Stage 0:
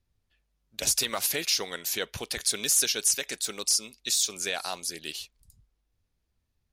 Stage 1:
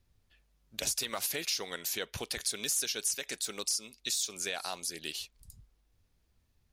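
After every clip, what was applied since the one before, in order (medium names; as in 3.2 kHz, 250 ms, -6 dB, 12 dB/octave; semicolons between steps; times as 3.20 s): compression 2:1, threshold -45 dBFS, peak gain reduction 14 dB; trim +5 dB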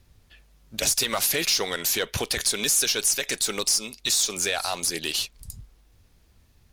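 in parallel at +1.5 dB: peak limiter -28.5 dBFS, peak gain reduction 10.5 dB; on the sum: sine folder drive 3 dB, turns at -15 dBFS; Chebyshev shaper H 4 -29 dB, 8 -36 dB, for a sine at -13.5 dBFS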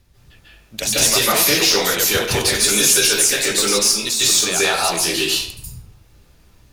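reverberation RT60 0.65 s, pre-delay 137 ms, DRR -8 dB; trim +1.5 dB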